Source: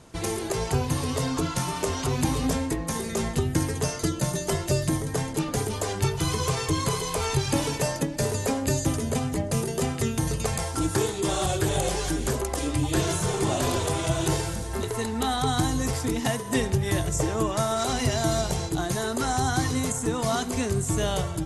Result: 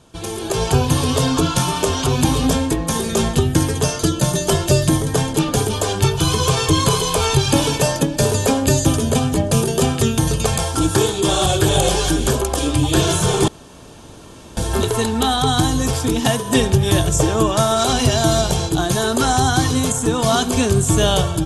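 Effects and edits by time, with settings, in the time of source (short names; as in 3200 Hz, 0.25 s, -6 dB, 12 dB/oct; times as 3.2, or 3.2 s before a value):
13.48–14.57 room tone
whole clip: bell 3300 Hz +6.5 dB 0.28 oct; notch 2000 Hz, Q 6.2; AGC gain up to 11.5 dB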